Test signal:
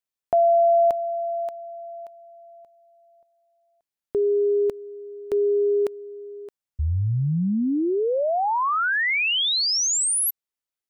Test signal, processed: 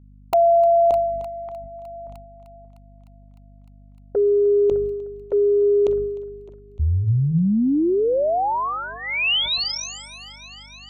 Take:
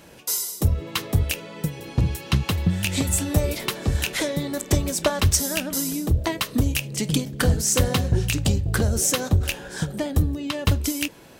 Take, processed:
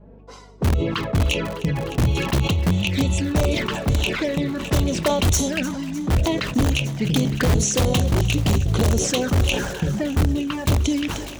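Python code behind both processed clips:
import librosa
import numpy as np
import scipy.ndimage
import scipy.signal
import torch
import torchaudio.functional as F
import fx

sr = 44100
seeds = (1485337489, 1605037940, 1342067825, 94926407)

p1 = scipy.signal.sosfilt(scipy.signal.butter(2, 7900.0, 'lowpass', fs=sr, output='sos'), x)
p2 = fx.env_lowpass(p1, sr, base_hz=540.0, full_db=-16.0)
p3 = fx.env_flanger(p2, sr, rest_ms=5.1, full_db=-20.5)
p4 = fx.hum_notches(p3, sr, base_hz=50, count=3)
p5 = (np.mod(10.0 ** (15.5 / 20.0) * p4 + 1.0, 2.0) - 1.0) / 10.0 ** (15.5 / 20.0)
p6 = p4 + (p5 * librosa.db_to_amplitude(-4.0))
p7 = fx.add_hum(p6, sr, base_hz=50, snr_db=27)
p8 = p7 + fx.echo_thinned(p7, sr, ms=304, feedback_pct=84, hz=490.0, wet_db=-19, dry=0)
y = fx.sustainer(p8, sr, db_per_s=41.0)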